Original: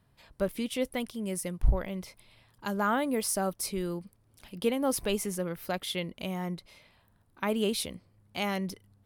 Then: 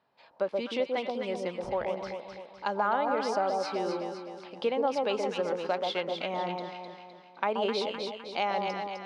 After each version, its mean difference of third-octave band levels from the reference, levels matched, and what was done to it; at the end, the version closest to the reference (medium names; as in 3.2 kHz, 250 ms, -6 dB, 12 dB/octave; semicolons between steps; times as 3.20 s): 12.0 dB: level rider gain up to 4 dB; cabinet simulation 390–4600 Hz, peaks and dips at 550 Hz +3 dB, 830 Hz +7 dB, 1.9 kHz -3 dB, 3.3 kHz -4 dB; on a send: echo whose repeats swap between lows and highs 128 ms, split 1 kHz, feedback 68%, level -3 dB; on the sum: compression 2.5:1, threshold -26 dBFS, peak gain reduction 7 dB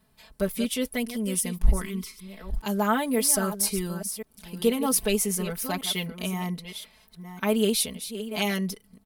6.0 dB: chunks repeated in reverse 528 ms, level -11 dB; time-frequency box 1.80–2.23 s, 450–920 Hz -20 dB; treble shelf 4.6 kHz +8 dB; comb 4.6 ms, depth 99%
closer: second